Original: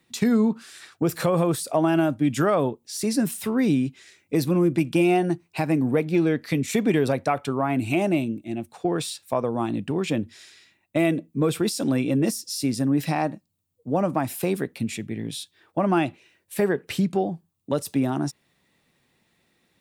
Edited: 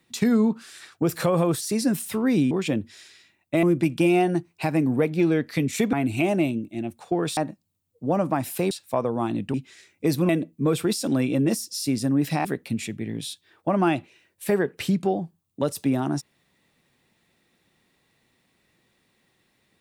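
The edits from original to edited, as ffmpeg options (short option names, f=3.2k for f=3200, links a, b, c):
-filter_complex "[0:a]asplit=10[a][b][c][d][e][f][g][h][i][j];[a]atrim=end=1.612[k];[b]atrim=start=2.928:end=3.832[l];[c]atrim=start=9.928:end=11.052[m];[d]atrim=start=4.578:end=6.882[n];[e]atrim=start=7.658:end=9.102[o];[f]atrim=start=13.208:end=14.552[p];[g]atrim=start=9.098:end=9.932[q];[h]atrim=start=3.828:end=4.582[r];[i]atrim=start=11.048:end=13.212[s];[j]atrim=start=14.548[t];[k][l]acrossfade=d=0.004:c1=hsin:c2=hsin[u];[u][m]acrossfade=d=0.004:c1=hsin:c2=hsin[v];[v][n]acrossfade=d=0.004:c1=hsin:c2=hsin[w];[w][o]acrossfade=d=0.004:c1=hsin:c2=hsin[x];[x][p]acrossfade=d=0.004:c1=hsin:c2=hsin[y];[y][q]acrossfade=d=0.004:c1=hsin:c2=hsin[z];[z][r]acrossfade=d=0.004:c1=hsin:c2=hsin[aa];[aa][s]acrossfade=d=0.004:c1=hsin:c2=hsin[ab];[ab][t]acrossfade=d=0.004:c1=hsin:c2=hsin"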